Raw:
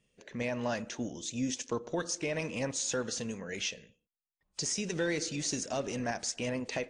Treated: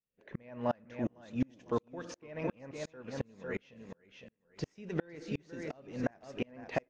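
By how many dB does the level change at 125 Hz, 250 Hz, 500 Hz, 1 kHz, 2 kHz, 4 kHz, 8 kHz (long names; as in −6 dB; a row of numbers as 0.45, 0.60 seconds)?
−1.5, −2.0, −3.5, −2.5, −8.0, −16.0, −24.0 decibels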